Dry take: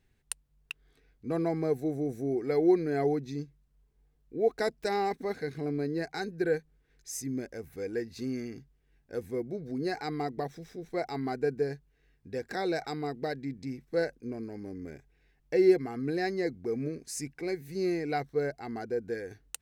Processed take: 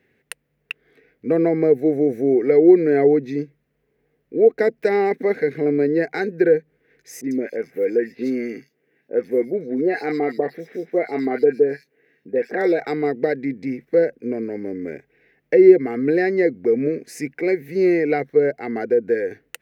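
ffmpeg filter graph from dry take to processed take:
-filter_complex "[0:a]asettb=1/sr,asplit=3[s0][s1][s2];[s0]atrim=end=7.214[s3];[s1]atrim=start=7.21:end=12.8,asetpts=PTS-STARTPTS,afade=t=in:d=0.004:c=qsin,afade=t=out:st=5.586:d=0.004:c=qsin,highpass=180,acrossover=split=1000|3400[s4][s5][s6];[s5]adelay=30[s7];[s6]adelay=100[s8];[s4][s7][s8]amix=inputs=3:normalize=0,atrim=end_sample=246519[s9];[s2]atrim=start=12.796[s10];[s3][s9]acrossfade=d=0.004:c1=hsin:c2=qsin[s11];[s11][s10]acrossfade=d=0.004:c1=qsin:c2=hsin,equalizer=f=250:t=o:w=1:g=4,equalizer=f=500:t=o:w=1:g=11,equalizer=f=1000:t=o:w=1:g=-5,equalizer=f=2000:t=o:w=1:g=12,equalizer=f=4000:t=o:w=1:g=-4,equalizer=f=8000:t=o:w=1:g=-9,acrossover=split=440[s12][s13];[s13]acompressor=threshold=0.0501:ratio=10[s14];[s12][s14]amix=inputs=2:normalize=0,highpass=140,volume=2"

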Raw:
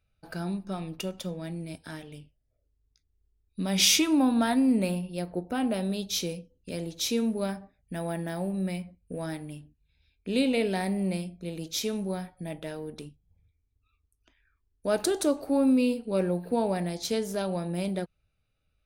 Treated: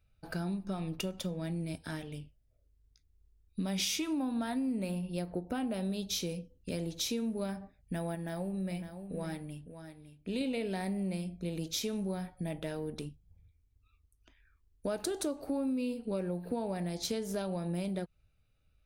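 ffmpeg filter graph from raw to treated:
-filter_complex "[0:a]asettb=1/sr,asplit=3[s0][s1][s2];[s0]atrim=end=8.154[s3];[s1]atrim=start=8.15:end=10.41,asetpts=PTS-STARTPTS,afade=t=in:d=0.004:c=qsin,afade=t=out:st=2.256:d=0.004:c=qsin,aecho=1:1:557:0.299,atrim=end_sample=99666,flanger=delay=0.6:depth=1.9:regen=77:speed=1.3:shape=triangular[s4];[s2]atrim=start=10.406[s5];[s3][s4]acrossfade=d=0.004:c1=hsin:c2=qsin[s6];[s6][s5]acrossfade=d=0.004:c1=qsin:c2=hsin,lowshelf=f=150:g=5.5,acompressor=threshold=0.0251:ratio=5"

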